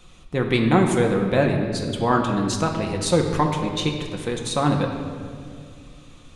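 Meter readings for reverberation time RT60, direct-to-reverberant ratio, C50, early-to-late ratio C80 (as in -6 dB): 2.2 s, 1.0 dB, 5.0 dB, 6.5 dB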